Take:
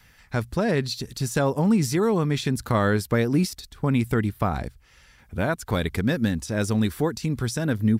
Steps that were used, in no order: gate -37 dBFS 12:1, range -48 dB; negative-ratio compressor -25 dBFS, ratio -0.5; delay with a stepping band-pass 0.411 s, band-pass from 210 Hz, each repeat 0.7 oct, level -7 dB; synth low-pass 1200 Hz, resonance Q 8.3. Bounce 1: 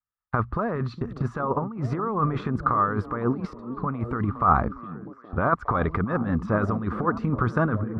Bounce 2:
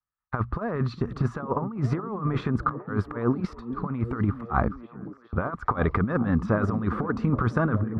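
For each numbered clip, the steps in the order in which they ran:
negative-ratio compressor > synth low-pass > gate > delay with a stepping band-pass; synth low-pass > negative-ratio compressor > gate > delay with a stepping band-pass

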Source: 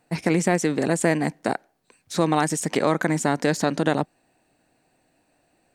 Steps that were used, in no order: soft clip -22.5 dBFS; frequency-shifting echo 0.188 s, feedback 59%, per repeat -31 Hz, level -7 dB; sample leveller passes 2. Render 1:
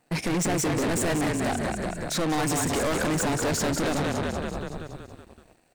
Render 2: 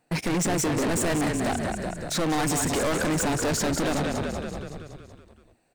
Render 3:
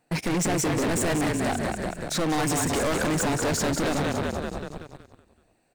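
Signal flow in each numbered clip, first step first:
frequency-shifting echo > soft clip > sample leveller; sample leveller > frequency-shifting echo > soft clip; frequency-shifting echo > sample leveller > soft clip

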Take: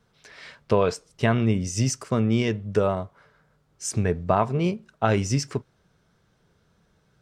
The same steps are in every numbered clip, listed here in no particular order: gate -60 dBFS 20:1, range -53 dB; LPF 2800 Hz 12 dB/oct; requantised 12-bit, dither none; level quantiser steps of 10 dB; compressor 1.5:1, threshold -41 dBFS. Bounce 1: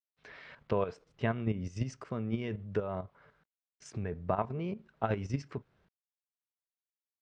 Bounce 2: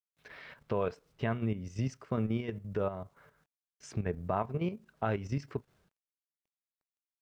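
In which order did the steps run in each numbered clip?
gate > level quantiser > requantised > compressor > LPF; gate > LPF > compressor > requantised > level quantiser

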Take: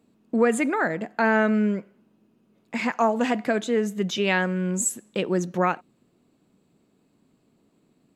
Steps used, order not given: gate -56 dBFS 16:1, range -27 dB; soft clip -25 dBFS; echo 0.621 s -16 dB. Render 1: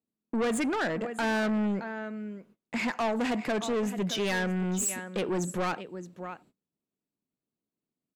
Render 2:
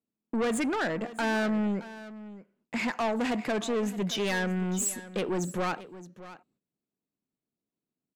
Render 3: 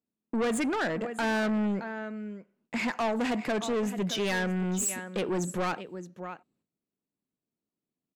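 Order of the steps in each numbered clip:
echo > soft clip > gate; soft clip > gate > echo; gate > echo > soft clip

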